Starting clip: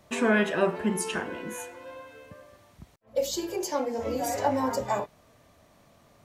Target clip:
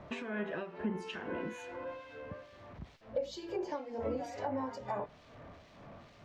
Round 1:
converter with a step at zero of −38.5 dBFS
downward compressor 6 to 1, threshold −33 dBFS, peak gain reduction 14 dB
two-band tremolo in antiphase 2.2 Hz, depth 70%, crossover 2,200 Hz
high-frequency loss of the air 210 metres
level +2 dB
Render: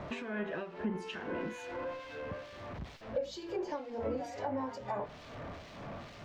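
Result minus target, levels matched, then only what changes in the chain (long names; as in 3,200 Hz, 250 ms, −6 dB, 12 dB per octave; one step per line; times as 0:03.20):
converter with a step at zero: distortion +10 dB
change: converter with a step at zero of −49.5 dBFS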